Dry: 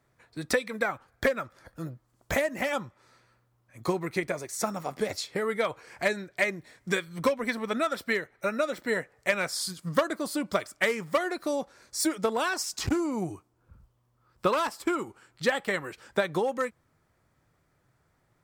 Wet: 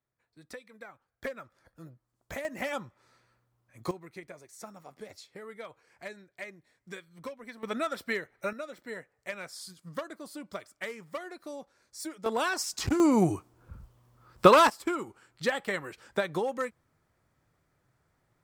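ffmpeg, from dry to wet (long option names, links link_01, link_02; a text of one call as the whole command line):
ffmpeg -i in.wav -af "asetnsamples=nb_out_samples=441:pad=0,asendcmd='1.24 volume volume -11.5dB;2.45 volume volume -4.5dB;3.91 volume volume -15.5dB;7.63 volume volume -4dB;8.53 volume volume -12dB;12.26 volume volume -1dB;13 volume volume 8dB;14.7 volume volume -3dB',volume=-19dB" out.wav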